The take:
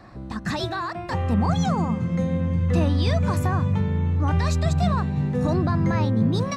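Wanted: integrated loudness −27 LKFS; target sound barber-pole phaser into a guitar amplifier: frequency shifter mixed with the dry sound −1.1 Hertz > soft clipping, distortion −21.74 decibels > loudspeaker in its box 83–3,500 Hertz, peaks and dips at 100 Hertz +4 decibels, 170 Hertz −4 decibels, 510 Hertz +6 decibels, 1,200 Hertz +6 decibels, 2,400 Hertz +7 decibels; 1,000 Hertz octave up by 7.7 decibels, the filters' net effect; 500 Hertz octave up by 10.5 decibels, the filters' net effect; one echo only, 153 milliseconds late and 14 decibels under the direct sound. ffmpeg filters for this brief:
ffmpeg -i in.wav -filter_complex "[0:a]equalizer=frequency=500:width_type=o:gain=6.5,equalizer=frequency=1000:width_type=o:gain=4,aecho=1:1:153:0.2,asplit=2[link_01][link_02];[link_02]afreqshift=-1.1[link_03];[link_01][link_03]amix=inputs=2:normalize=1,asoftclip=threshold=-14dB,highpass=83,equalizer=frequency=100:width_type=q:width=4:gain=4,equalizer=frequency=170:width_type=q:width=4:gain=-4,equalizer=frequency=510:width_type=q:width=4:gain=6,equalizer=frequency=1200:width_type=q:width=4:gain=6,equalizer=frequency=2400:width_type=q:width=4:gain=7,lowpass=frequency=3500:width=0.5412,lowpass=frequency=3500:width=1.3066,volume=-3dB" out.wav

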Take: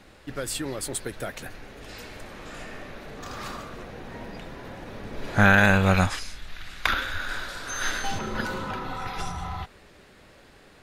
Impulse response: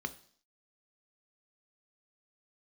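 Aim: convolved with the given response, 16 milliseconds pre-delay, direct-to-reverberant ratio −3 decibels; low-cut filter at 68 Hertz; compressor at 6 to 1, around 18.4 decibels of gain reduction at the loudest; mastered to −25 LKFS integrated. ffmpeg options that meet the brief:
-filter_complex "[0:a]highpass=68,acompressor=threshold=-34dB:ratio=6,asplit=2[link_01][link_02];[1:a]atrim=start_sample=2205,adelay=16[link_03];[link_02][link_03]afir=irnorm=-1:irlink=0,volume=1dB[link_04];[link_01][link_04]amix=inputs=2:normalize=0,volume=9dB"

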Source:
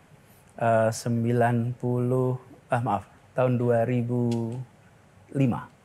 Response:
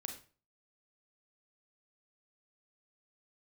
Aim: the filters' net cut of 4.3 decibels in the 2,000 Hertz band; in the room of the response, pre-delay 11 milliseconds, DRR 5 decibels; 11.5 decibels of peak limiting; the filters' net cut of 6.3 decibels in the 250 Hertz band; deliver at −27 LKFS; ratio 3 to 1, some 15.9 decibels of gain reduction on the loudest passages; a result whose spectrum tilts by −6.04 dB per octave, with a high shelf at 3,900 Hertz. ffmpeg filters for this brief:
-filter_complex "[0:a]equalizer=frequency=250:width_type=o:gain=-7.5,equalizer=frequency=2000:width_type=o:gain=-8,highshelf=frequency=3900:gain=6,acompressor=threshold=-42dB:ratio=3,alimiter=level_in=13.5dB:limit=-24dB:level=0:latency=1,volume=-13.5dB,asplit=2[link_01][link_02];[1:a]atrim=start_sample=2205,adelay=11[link_03];[link_02][link_03]afir=irnorm=-1:irlink=0,volume=-2.5dB[link_04];[link_01][link_04]amix=inputs=2:normalize=0,volume=20dB"

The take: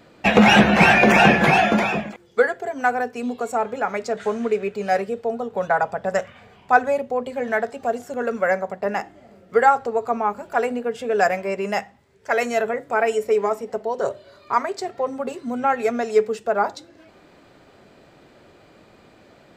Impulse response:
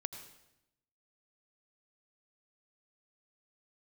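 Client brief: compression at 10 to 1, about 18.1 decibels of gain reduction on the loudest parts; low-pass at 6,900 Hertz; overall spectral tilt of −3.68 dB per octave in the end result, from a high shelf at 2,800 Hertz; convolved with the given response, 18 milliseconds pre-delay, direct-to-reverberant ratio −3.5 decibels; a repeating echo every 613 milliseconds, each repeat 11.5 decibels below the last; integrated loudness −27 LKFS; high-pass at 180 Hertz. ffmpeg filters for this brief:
-filter_complex "[0:a]highpass=180,lowpass=6900,highshelf=frequency=2800:gain=-7,acompressor=threshold=-29dB:ratio=10,aecho=1:1:613|1226|1839:0.266|0.0718|0.0194,asplit=2[link_01][link_02];[1:a]atrim=start_sample=2205,adelay=18[link_03];[link_02][link_03]afir=irnorm=-1:irlink=0,volume=4.5dB[link_04];[link_01][link_04]amix=inputs=2:normalize=0,volume=2dB"

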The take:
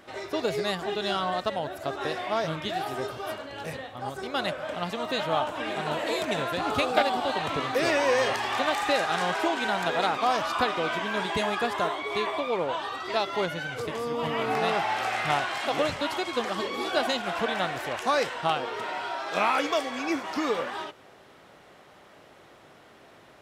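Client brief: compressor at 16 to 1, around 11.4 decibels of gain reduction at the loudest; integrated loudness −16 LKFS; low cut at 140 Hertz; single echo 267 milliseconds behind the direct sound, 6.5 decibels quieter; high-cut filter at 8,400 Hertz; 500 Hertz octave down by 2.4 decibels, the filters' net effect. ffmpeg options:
ffmpeg -i in.wav -af "highpass=140,lowpass=8400,equalizer=frequency=500:width_type=o:gain=-3,acompressor=threshold=-30dB:ratio=16,aecho=1:1:267:0.473,volume=17.5dB" out.wav

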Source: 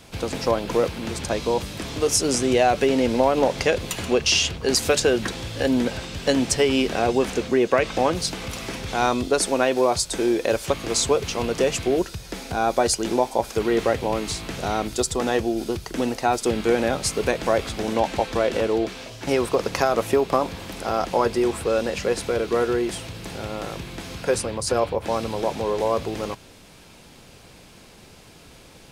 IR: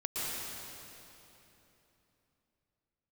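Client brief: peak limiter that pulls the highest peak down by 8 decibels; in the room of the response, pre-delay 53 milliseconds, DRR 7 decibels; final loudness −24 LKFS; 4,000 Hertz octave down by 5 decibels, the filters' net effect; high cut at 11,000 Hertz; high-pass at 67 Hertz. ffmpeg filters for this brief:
-filter_complex "[0:a]highpass=67,lowpass=11000,equalizer=frequency=4000:width_type=o:gain=-7,alimiter=limit=-14dB:level=0:latency=1,asplit=2[link_01][link_02];[1:a]atrim=start_sample=2205,adelay=53[link_03];[link_02][link_03]afir=irnorm=-1:irlink=0,volume=-12.5dB[link_04];[link_01][link_04]amix=inputs=2:normalize=0,volume=1dB"

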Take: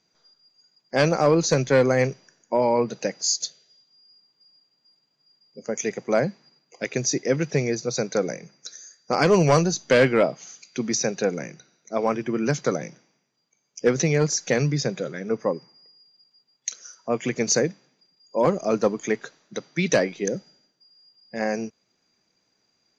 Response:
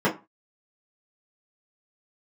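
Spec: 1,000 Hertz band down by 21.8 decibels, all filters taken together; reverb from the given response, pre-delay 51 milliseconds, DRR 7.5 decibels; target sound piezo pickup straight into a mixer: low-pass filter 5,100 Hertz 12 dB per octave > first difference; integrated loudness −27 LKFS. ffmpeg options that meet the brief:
-filter_complex "[0:a]equalizer=frequency=1000:width_type=o:gain=-6,asplit=2[link_01][link_02];[1:a]atrim=start_sample=2205,adelay=51[link_03];[link_02][link_03]afir=irnorm=-1:irlink=0,volume=-23.5dB[link_04];[link_01][link_04]amix=inputs=2:normalize=0,lowpass=5100,aderivative,volume=11.5dB"

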